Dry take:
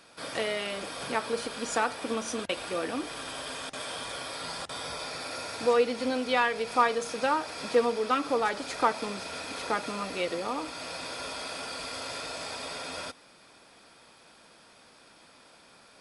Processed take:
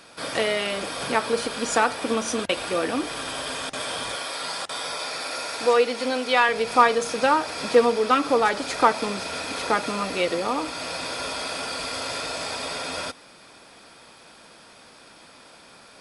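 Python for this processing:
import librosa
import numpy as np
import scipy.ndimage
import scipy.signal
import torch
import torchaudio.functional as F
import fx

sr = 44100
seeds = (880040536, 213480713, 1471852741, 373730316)

y = fx.highpass(x, sr, hz=440.0, slope=6, at=(4.15, 6.49))
y = F.gain(torch.from_numpy(y), 7.0).numpy()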